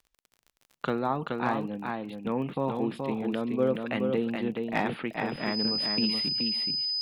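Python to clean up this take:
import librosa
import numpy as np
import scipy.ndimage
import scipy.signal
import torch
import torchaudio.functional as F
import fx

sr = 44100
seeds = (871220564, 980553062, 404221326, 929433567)

y = fx.fix_declip(x, sr, threshold_db=-15.0)
y = fx.fix_declick_ar(y, sr, threshold=6.5)
y = fx.notch(y, sr, hz=5000.0, q=30.0)
y = fx.fix_echo_inverse(y, sr, delay_ms=425, level_db=-4.5)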